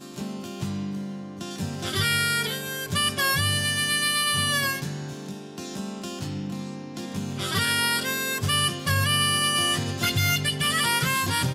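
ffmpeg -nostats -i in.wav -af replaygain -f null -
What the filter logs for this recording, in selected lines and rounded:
track_gain = +4.8 dB
track_peak = 0.163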